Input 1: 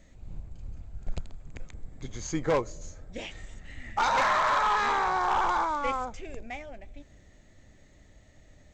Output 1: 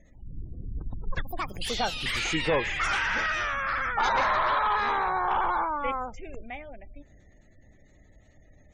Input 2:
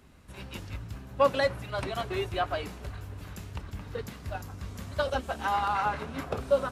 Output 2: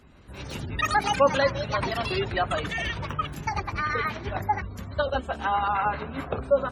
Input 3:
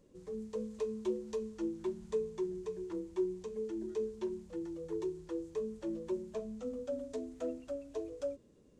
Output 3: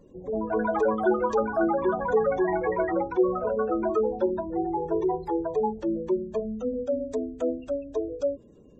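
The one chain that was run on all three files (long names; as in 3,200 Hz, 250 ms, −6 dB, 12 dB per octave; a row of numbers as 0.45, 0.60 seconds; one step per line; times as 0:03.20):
delay with pitch and tempo change per echo 144 ms, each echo +7 semitones, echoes 3
gate on every frequency bin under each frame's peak −30 dB strong
loudness normalisation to −27 LKFS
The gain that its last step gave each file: 0.0, +3.0, +11.0 decibels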